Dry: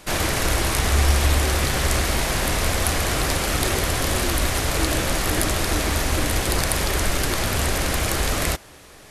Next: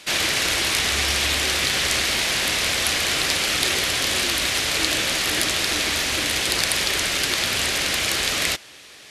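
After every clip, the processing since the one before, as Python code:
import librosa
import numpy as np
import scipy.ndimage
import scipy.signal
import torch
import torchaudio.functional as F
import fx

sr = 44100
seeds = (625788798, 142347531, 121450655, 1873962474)

y = fx.weighting(x, sr, curve='D')
y = y * librosa.db_to_amplitude(-4.0)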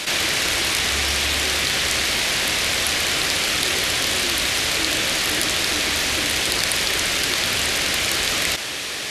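y = fx.env_flatten(x, sr, amount_pct=70)
y = y * librosa.db_to_amplitude(-1.0)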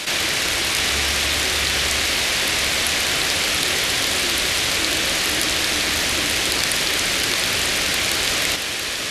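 y = x + 10.0 ** (-7.0 / 20.0) * np.pad(x, (int(679 * sr / 1000.0), 0))[:len(x)]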